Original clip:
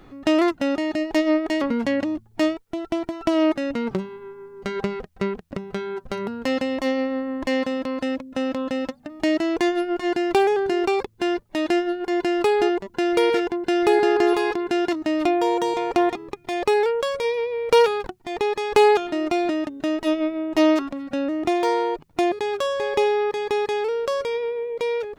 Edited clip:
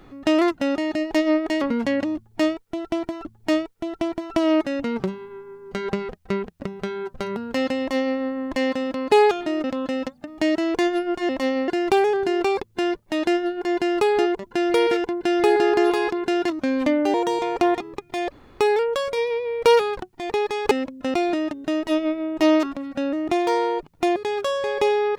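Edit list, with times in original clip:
0:02.16–0:03.25: repeat, 2 plays
0:06.71–0:07.10: duplicate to 0:10.11
0:08.03–0:08.46: swap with 0:18.78–0:19.30
0:15.03–0:15.49: play speed 85%
0:16.67: splice in room tone 0.28 s

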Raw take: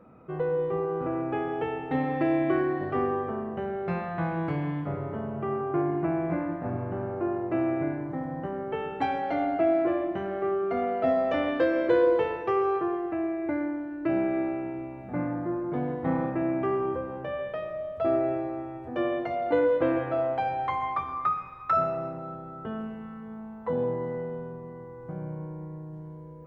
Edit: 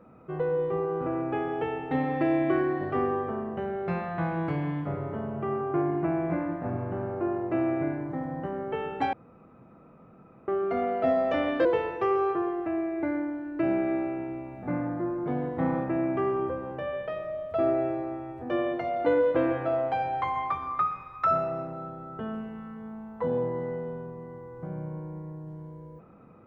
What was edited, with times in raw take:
0:09.13–0:10.48: fill with room tone
0:11.65–0:12.11: remove

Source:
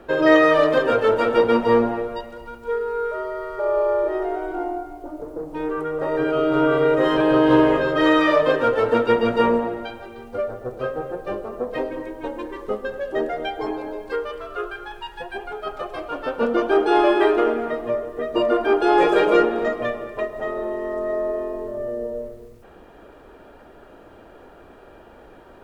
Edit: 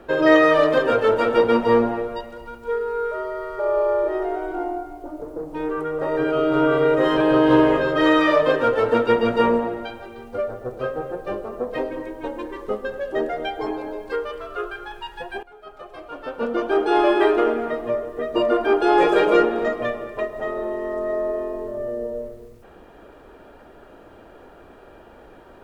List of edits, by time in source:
0:15.43–0:17.20: fade in, from −17 dB

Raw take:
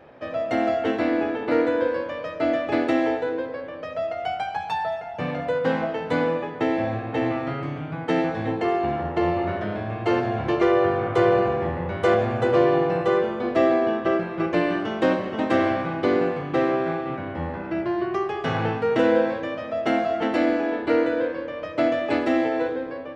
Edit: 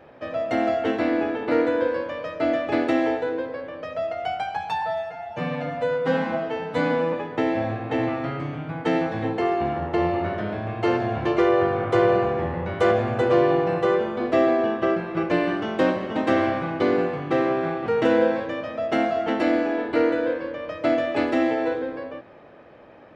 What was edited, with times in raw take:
0:04.82–0:06.36: time-stretch 1.5×
0:17.09–0:18.80: remove

